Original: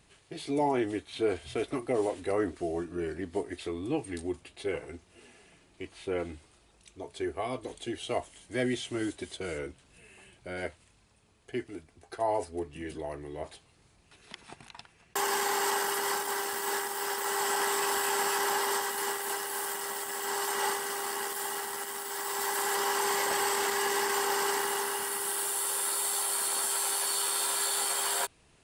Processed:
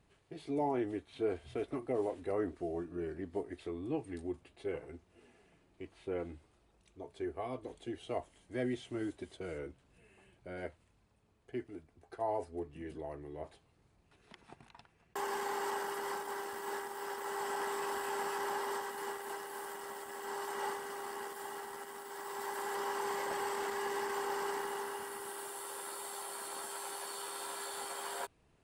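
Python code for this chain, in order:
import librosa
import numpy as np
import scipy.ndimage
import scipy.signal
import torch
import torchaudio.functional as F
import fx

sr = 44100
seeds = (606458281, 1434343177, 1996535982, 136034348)

y = fx.high_shelf(x, sr, hz=2100.0, db=-11.5)
y = F.gain(torch.from_numpy(y), -5.0).numpy()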